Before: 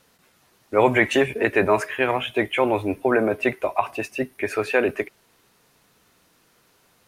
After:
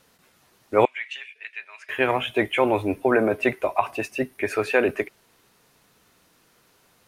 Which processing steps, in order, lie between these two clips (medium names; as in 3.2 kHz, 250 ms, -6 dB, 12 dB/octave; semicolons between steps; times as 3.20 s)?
0.85–1.89 s: ladder band-pass 3.2 kHz, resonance 35%